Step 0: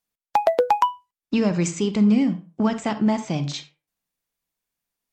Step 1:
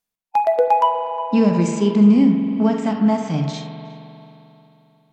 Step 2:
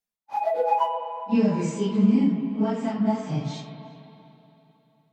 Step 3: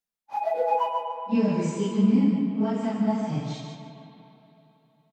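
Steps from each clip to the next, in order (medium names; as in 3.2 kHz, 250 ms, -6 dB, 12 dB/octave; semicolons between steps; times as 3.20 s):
band-passed feedback delay 361 ms, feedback 43%, band-pass 1.1 kHz, level -16 dB; harmonic-percussive split percussive -12 dB; spring tank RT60 3.1 s, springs 44 ms, chirp 40 ms, DRR 6 dB; trim +4.5 dB
phase randomisation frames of 100 ms; trim -7 dB
feedback delay 145 ms, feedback 27%, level -6 dB; trim -2 dB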